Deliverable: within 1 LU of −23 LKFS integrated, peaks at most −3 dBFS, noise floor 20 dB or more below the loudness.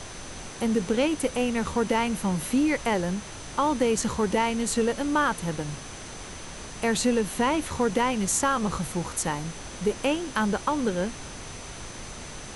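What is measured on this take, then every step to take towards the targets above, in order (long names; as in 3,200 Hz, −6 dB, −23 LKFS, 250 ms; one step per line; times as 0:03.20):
interfering tone 6,100 Hz; level of the tone −47 dBFS; background noise floor −40 dBFS; target noise floor −47 dBFS; integrated loudness −26.5 LKFS; sample peak −12.0 dBFS; target loudness −23.0 LKFS
→ notch filter 6,100 Hz, Q 30
noise reduction from a noise print 7 dB
level +3.5 dB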